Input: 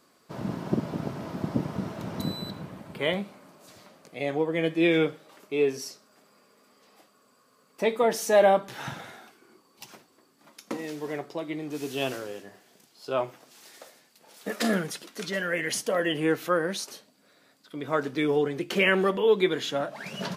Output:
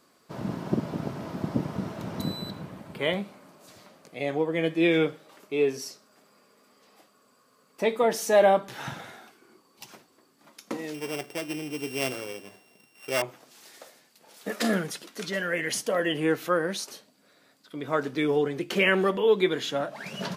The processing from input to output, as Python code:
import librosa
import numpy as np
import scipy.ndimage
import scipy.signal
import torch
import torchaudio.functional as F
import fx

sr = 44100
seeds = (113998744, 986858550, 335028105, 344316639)

y = fx.sample_sort(x, sr, block=16, at=(10.94, 13.22))